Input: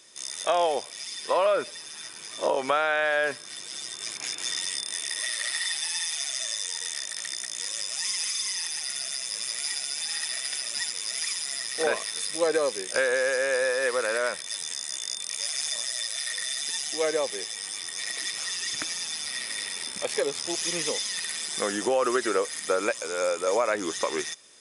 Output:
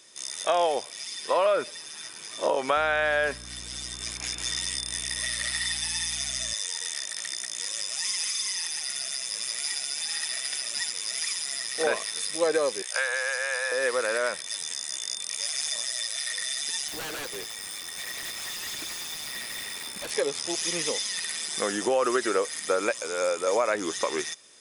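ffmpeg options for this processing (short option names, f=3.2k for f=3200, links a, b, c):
-filter_complex "[0:a]asettb=1/sr,asplit=3[a][b][c];[a]atrim=end=2.764[d];[b]atrim=start=2.76:end=6.54,asetpts=PTS-STARTPTS,afade=t=in:d=0.004:c=qsin,afade=t=out:st=3.776:d=0.004:c=qsin,aeval=exprs='val(0)+0.00562*(sin(2*PI*60*n/s)+sin(2*PI*2*60*n/s)/2+sin(2*PI*3*60*n/s)/3+sin(2*PI*4*60*n/s)/4+sin(2*PI*5*60*n/s)/5)':c=same[e];[c]atrim=start=6.536[f];[d][e]acrossfade=d=0.004:c1=hsin:c2=qsin[g];[g][f]acrossfade=d=0.004:c1=qsin:c2=hsin,asettb=1/sr,asplit=3[h][i][j];[h]atrim=end=12.824[k];[i]atrim=start=12.82:end=13.72,asetpts=PTS-STARTPTS,afade=t=in:d=0.004:c=qsin,afade=t=out:st=0.896:d=0.004:c=qsin,highpass=f=700:w=0.5412,highpass=f=700:w=1.3066[l];[j]atrim=start=13.716[m];[k][l]acrossfade=d=0.004:c1=hsin:c2=qsin[n];[n][m]acrossfade=d=0.004:c1=qsin:c2=hsin,asettb=1/sr,asplit=3[o][p][q];[o]atrim=end=16.884[r];[p]atrim=start=16.88:end=20.11,asetpts=PTS-STARTPTS,afade=t=in:d=0.004:c=qsin,afade=t=out:st=3.226:d=0.004:c=qsin,aeval=exprs='0.0335*(abs(mod(val(0)/0.0335+3,4)-2)-1)':c=same[s];[q]atrim=start=20.106[t];[r][s]acrossfade=d=0.004:c1=hsin:c2=qsin[u];[u][t]acrossfade=d=0.004:c1=qsin:c2=hsin"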